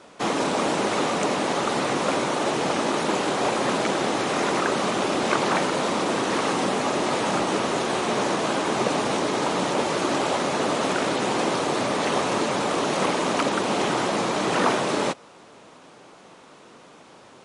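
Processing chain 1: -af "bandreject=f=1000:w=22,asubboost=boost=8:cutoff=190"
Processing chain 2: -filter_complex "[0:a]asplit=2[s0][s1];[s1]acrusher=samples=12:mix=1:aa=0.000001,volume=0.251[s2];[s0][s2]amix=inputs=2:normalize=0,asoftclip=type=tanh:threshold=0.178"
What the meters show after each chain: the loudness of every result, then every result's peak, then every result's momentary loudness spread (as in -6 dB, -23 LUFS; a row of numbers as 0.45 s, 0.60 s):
-21.5 LUFS, -23.5 LUFS; -5.5 dBFS, -15.0 dBFS; 3 LU, 1 LU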